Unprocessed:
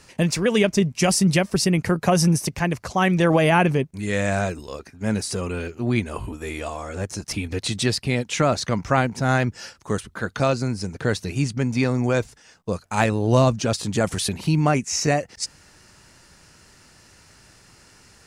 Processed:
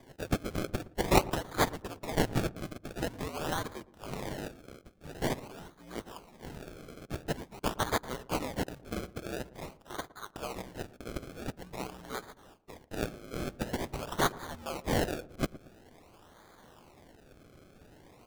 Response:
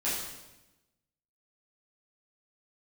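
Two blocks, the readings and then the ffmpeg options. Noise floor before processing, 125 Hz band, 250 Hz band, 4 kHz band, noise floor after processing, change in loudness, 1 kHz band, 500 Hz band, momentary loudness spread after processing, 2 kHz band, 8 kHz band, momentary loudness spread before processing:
-53 dBFS, -16.5 dB, -15.0 dB, -12.0 dB, -59 dBFS, -13.5 dB, -10.5 dB, -13.0 dB, 16 LU, -13.0 dB, -15.0 dB, 12 LU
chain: -filter_complex "[0:a]aderivative,afreqshift=-68,acrusher=samples=32:mix=1:aa=0.000001:lfo=1:lforange=32:lforate=0.47,asplit=2[a][b];[b]adelay=114,lowpass=f=900:p=1,volume=-17dB,asplit=2[c][d];[d]adelay=114,lowpass=f=900:p=1,volume=0.44,asplit=2[e][f];[f]adelay=114,lowpass=f=900:p=1,volume=0.44,asplit=2[g][h];[h]adelay=114,lowpass=f=900:p=1,volume=0.44[i];[a][c][e][g][i]amix=inputs=5:normalize=0"

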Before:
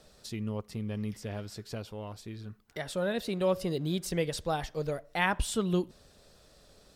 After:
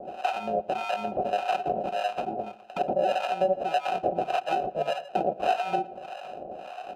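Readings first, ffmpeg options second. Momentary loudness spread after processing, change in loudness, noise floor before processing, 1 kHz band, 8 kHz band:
12 LU, +5.0 dB, -60 dBFS, +13.0 dB, under -10 dB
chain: -filter_complex "[0:a]tiltshelf=f=1.1k:g=-9.5,aecho=1:1:5.3:0.81,acompressor=threshold=-39dB:ratio=6,apsyclip=31dB,acrusher=samples=39:mix=1:aa=0.000001,asplit=3[a][b][c];[a]bandpass=f=730:t=q:w=8,volume=0dB[d];[b]bandpass=f=1.09k:t=q:w=8,volume=-6dB[e];[c]bandpass=f=2.44k:t=q:w=8,volume=-9dB[f];[d][e][f]amix=inputs=3:normalize=0,acrossover=split=690[g][h];[g]aeval=exprs='val(0)*(1-1/2+1/2*cos(2*PI*1.7*n/s))':c=same[i];[h]aeval=exprs='val(0)*(1-1/2-1/2*cos(2*PI*1.7*n/s))':c=same[j];[i][j]amix=inputs=2:normalize=0,asplit=2[k][l];[l]adelay=114,lowpass=f=3.2k:p=1,volume=-18.5dB,asplit=2[m][n];[n]adelay=114,lowpass=f=3.2k:p=1,volume=0.41,asplit=2[o][p];[p]adelay=114,lowpass=f=3.2k:p=1,volume=0.41[q];[k][m][o][q]amix=inputs=4:normalize=0,volume=2.5dB"

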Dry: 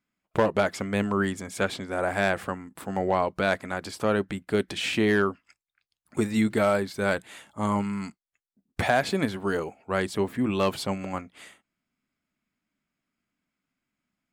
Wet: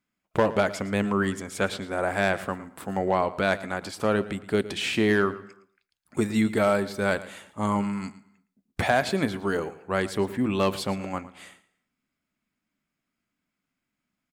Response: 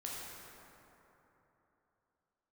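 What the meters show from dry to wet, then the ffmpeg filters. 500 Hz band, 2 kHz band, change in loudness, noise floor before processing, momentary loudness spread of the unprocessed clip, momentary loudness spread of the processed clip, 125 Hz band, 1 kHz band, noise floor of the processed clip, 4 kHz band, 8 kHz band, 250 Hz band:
+0.5 dB, +0.5 dB, +0.5 dB, under -85 dBFS, 10 LU, 11 LU, +0.5 dB, +0.5 dB, -84 dBFS, +0.5 dB, +0.5 dB, +0.5 dB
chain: -filter_complex "[0:a]aecho=1:1:113|226:0.141|0.0212,asplit=2[a][b];[1:a]atrim=start_sample=2205,afade=t=out:st=0.41:d=0.01,atrim=end_sample=18522[c];[b][c]afir=irnorm=-1:irlink=0,volume=-20dB[d];[a][d]amix=inputs=2:normalize=0"

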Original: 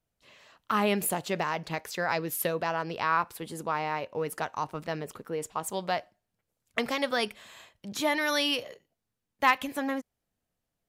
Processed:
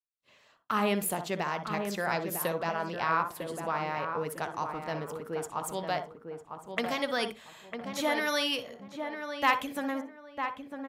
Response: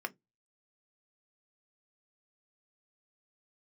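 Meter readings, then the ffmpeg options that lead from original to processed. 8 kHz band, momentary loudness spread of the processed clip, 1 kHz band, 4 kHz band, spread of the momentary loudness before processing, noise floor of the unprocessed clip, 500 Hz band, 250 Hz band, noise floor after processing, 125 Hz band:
-2.5 dB, 10 LU, -1.0 dB, -2.0 dB, 11 LU, -85 dBFS, -1.0 dB, -1.0 dB, -63 dBFS, -1.0 dB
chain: -filter_complex "[0:a]asplit=2[a][b];[b]adelay=952,lowpass=f=1.5k:p=1,volume=-6dB,asplit=2[c][d];[d]adelay=952,lowpass=f=1.5k:p=1,volume=0.28,asplit=2[e][f];[f]adelay=952,lowpass=f=1.5k:p=1,volume=0.28,asplit=2[g][h];[h]adelay=952,lowpass=f=1.5k:p=1,volume=0.28[i];[a][c][e][g][i]amix=inputs=5:normalize=0,agate=range=-33dB:threshold=-52dB:ratio=3:detection=peak,asplit=2[j][k];[1:a]atrim=start_sample=2205,asetrate=27342,aresample=44100,adelay=60[l];[k][l]afir=irnorm=-1:irlink=0,volume=-14dB[m];[j][m]amix=inputs=2:normalize=0,volume=-2.5dB"

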